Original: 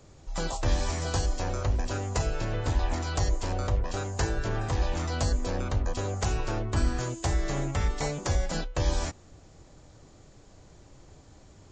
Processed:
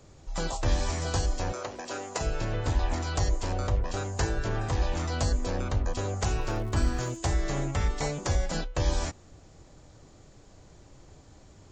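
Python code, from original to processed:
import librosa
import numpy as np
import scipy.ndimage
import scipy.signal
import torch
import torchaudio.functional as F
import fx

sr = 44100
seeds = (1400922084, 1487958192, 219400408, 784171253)

y = fx.highpass(x, sr, hz=330.0, slope=12, at=(1.52, 2.21))
y = fx.dmg_crackle(y, sr, seeds[0], per_s=240.0, level_db=-43.0, at=(6.38, 7.16), fade=0.02)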